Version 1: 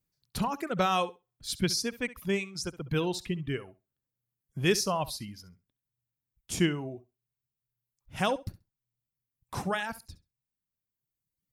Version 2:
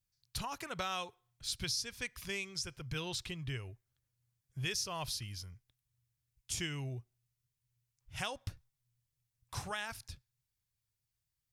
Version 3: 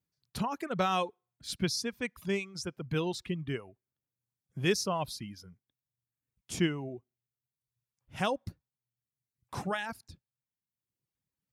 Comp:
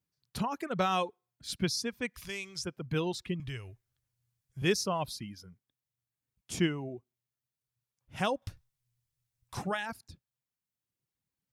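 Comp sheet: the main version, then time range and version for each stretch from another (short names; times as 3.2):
3
2.14–2.64 from 2
3.4–4.62 from 2
8.42–9.57 from 2
not used: 1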